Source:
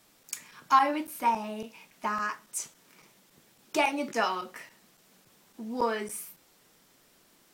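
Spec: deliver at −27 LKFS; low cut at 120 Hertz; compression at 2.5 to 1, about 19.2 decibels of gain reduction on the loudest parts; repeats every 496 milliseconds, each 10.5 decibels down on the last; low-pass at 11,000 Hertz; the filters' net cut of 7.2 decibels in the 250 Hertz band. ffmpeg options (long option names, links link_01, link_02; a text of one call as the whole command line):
ffmpeg -i in.wav -af "highpass=120,lowpass=11000,equalizer=frequency=250:width_type=o:gain=-8.5,acompressor=threshold=-47dB:ratio=2.5,aecho=1:1:496|992|1488:0.299|0.0896|0.0269,volume=19dB" out.wav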